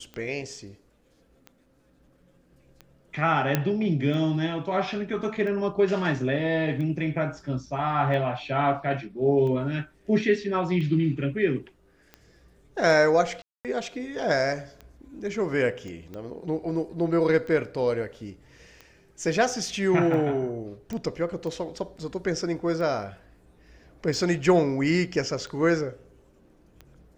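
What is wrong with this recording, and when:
tick 45 rpm -26 dBFS
3.55 s: pop -8 dBFS
13.42–13.65 s: dropout 228 ms
15.88 s: pop -29 dBFS
20.93 s: pop -22 dBFS

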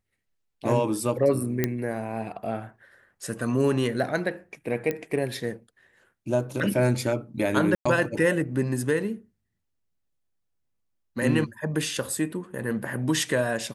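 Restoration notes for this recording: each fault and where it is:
1.64 s: pop -9 dBFS
4.91 s: pop -15 dBFS
7.75–7.86 s: dropout 105 ms

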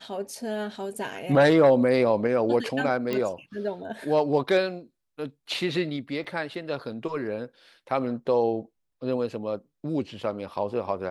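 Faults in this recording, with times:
3.13 s: pop -16 dBFS
6.24–6.25 s: dropout 5.1 ms

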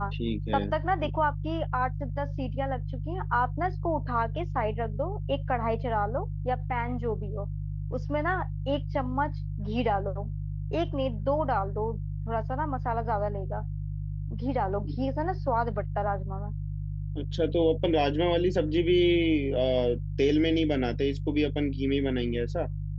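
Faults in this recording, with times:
hum 50 Hz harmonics 3 -33 dBFS

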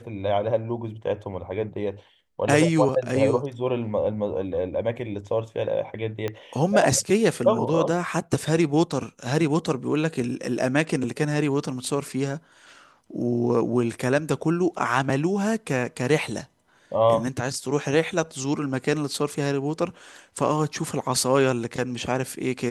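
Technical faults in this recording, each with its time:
6.28 s: pop -15 dBFS

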